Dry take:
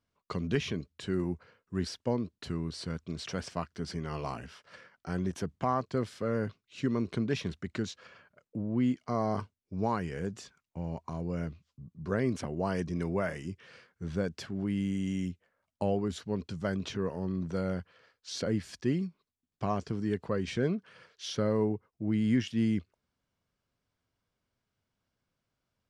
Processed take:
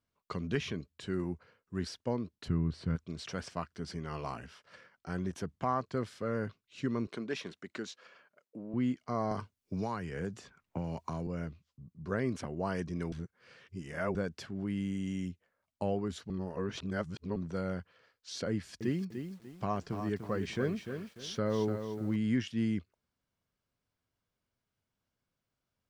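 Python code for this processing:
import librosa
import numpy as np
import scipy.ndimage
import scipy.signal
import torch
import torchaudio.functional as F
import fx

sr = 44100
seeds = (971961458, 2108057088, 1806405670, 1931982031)

y = fx.bass_treble(x, sr, bass_db=10, treble_db=-12, at=(2.48, 2.96))
y = fx.highpass(y, sr, hz=280.0, slope=12, at=(7.07, 8.74))
y = fx.band_squash(y, sr, depth_pct=100, at=(9.31, 11.27))
y = fx.echo_crushed(y, sr, ms=296, feedback_pct=35, bits=9, wet_db=-7.5, at=(18.51, 22.16))
y = fx.edit(y, sr, fx.reverse_span(start_s=13.12, length_s=1.03),
    fx.reverse_span(start_s=16.3, length_s=1.06), tone=tone)
y = fx.dynamic_eq(y, sr, hz=1400.0, q=1.2, threshold_db=-46.0, ratio=4.0, max_db=3)
y = y * 10.0 ** (-3.5 / 20.0)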